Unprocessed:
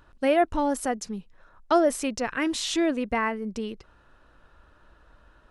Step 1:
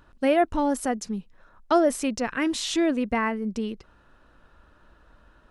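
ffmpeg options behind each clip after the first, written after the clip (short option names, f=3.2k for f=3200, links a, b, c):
-af "equalizer=f=220:t=o:w=0.85:g=4"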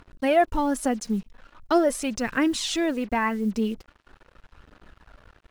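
-af "aphaser=in_gain=1:out_gain=1:delay=4.8:decay=0.44:speed=0.42:type=triangular,acrusher=bits=7:mix=0:aa=0.5"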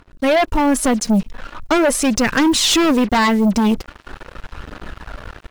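-filter_complex "[0:a]dynaudnorm=f=130:g=3:m=16.5dB,asplit=2[a][b];[b]aeval=exprs='0.944*sin(PI/2*3.55*val(0)/0.944)':c=same,volume=-8dB[c];[a][c]amix=inputs=2:normalize=0,volume=-7.5dB"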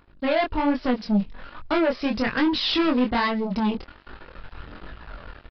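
-af "flanger=delay=19.5:depth=5.4:speed=1.2,aresample=11025,aresample=44100,volume=-4.5dB"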